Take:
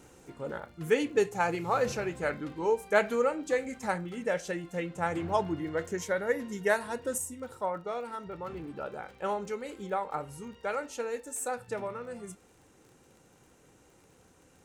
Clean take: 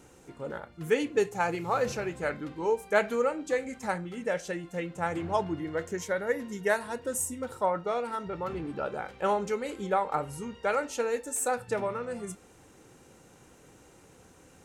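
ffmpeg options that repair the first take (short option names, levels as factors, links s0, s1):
-af "adeclick=t=4,asetnsamples=n=441:p=0,asendcmd='7.18 volume volume 5dB',volume=1"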